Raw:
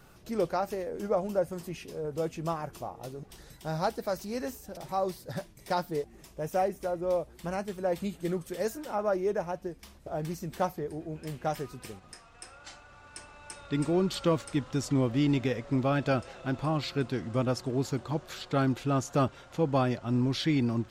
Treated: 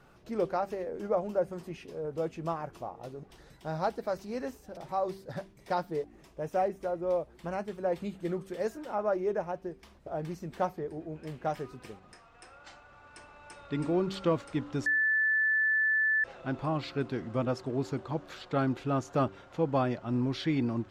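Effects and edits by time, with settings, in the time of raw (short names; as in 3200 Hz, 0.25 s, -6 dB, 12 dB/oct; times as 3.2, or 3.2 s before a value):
14.86–16.24 bleep 1750 Hz -21.5 dBFS
whole clip: LPF 2200 Hz 6 dB/oct; low shelf 180 Hz -5.5 dB; de-hum 96.75 Hz, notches 4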